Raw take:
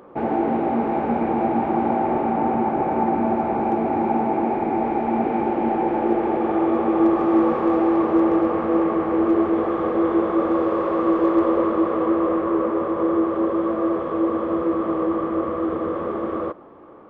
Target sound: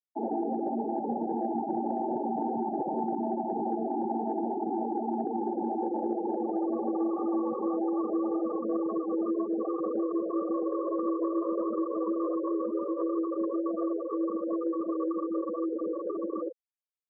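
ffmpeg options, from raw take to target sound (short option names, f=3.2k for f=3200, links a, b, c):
-filter_complex "[0:a]afftfilt=real='re*gte(hypot(re,im),0.224)':imag='im*gte(hypot(re,im),0.224)':win_size=1024:overlap=0.75,acrossover=split=140|280|730[a][b][c][d];[a]acompressor=threshold=-52dB:ratio=4[e];[b]acompressor=threshold=-33dB:ratio=4[f];[c]acompressor=threshold=-27dB:ratio=4[g];[d]acompressor=threshold=-41dB:ratio=4[h];[e][f][g][h]amix=inputs=4:normalize=0,lowpass=f=1.7k:t=q:w=6.7,volume=-5dB"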